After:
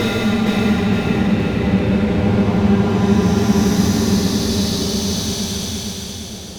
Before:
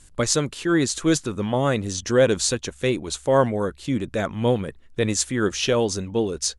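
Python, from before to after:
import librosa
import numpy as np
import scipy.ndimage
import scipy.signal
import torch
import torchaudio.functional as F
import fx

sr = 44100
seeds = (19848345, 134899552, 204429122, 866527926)

p1 = scipy.signal.sosfilt(scipy.signal.butter(6, 5500.0, 'lowpass', fs=sr, output='sos'), x)
p2 = fx.high_shelf(p1, sr, hz=2100.0, db=-3.5)
p3 = fx.level_steps(p2, sr, step_db=16)
p4 = p2 + (p3 * 10.0 ** (-1.5 / 20.0))
p5 = fx.comb_fb(p4, sr, f0_hz=200.0, decay_s=0.56, harmonics='all', damping=0.0, mix_pct=70)
p6 = fx.fuzz(p5, sr, gain_db=33.0, gate_db=-41.0)
p7 = fx.paulstretch(p6, sr, seeds[0], factor=24.0, window_s=0.05, from_s=1.76)
y = p7 + fx.echo_feedback(p7, sr, ms=464, feedback_pct=48, wet_db=-3.5, dry=0)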